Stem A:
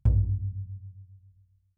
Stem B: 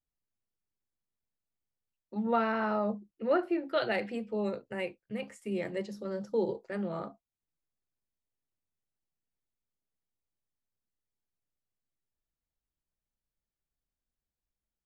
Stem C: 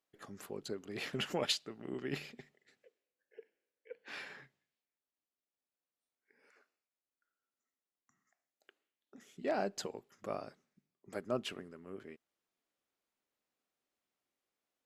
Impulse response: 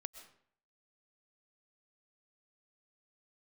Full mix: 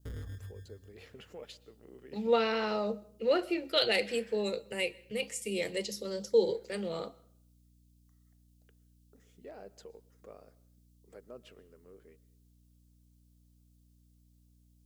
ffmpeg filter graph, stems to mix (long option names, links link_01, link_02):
-filter_complex "[0:a]acrusher=samples=26:mix=1:aa=0.000001,volume=-5dB[link_01];[1:a]aexciter=amount=4.4:drive=9.1:freq=2700,volume=-6.5dB,asplit=2[link_02][link_03];[link_03]volume=-7.5dB[link_04];[2:a]acompressor=threshold=-59dB:ratio=1.5,volume=-1dB,asplit=2[link_05][link_06];[link_06]volume=-13.5dB[link_07];[link_01][link_05]amix=inputs=2:normalize=0,volume=30dB,asoftclip=hard,volume=-30dB,alimiter=level_in=15dB:limit=-24dB:level=0:latency=1:release=102,volume=-15dB,volume=0dB[link_08];[3:a]atrim=start_sample=2205[link_09];[link_04][link_07]amix=inputs=2:normalize=0[link_10];[link_10][link_09]afir=irnorm=-1:irlink=0[link_11];[link_02][link_08][link_11]amix=inputs=3:normalize=0,equalizer=frequency=470:width_type=o:width=0.37:gain=12,aeval=exprs='val(0)+0.000708*(sin(2*PI*60*n/s)+sin(2*PI*2*60*n/s)/2+sin(2*PI*3*60*n/s)/3+sin(2*PI*4*60*n/s)/4+sin(2*PI*5*60*n/s)/5)':channel_layout=same,adynamicequalizer=threshold=0.00158:dfrequency=2000:dqfactor=2.7:tfrequency=2000:tqfactor=2.7:attack=5:release=100:ratio=0.375:range=3.5:mode=boostabove:tftype=bell"